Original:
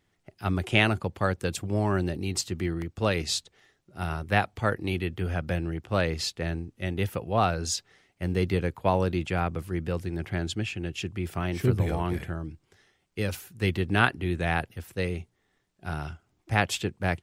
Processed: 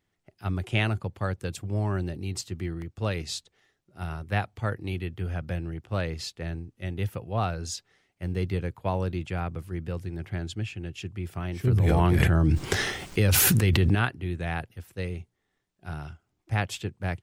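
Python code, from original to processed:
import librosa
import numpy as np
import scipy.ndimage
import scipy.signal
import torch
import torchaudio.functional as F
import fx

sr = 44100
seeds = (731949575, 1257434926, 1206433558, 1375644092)

y = fx.dynamic_eq(x, sr, hz=110.0, q=1.5, threshold_db=-42.0, ratio=4.0, max_db=7)
y = fx.env_flatten(y, sr, amount_pct=100, at=(11.67, 13.95))
y = y * 10.0 ** (-5.5 / 20.0)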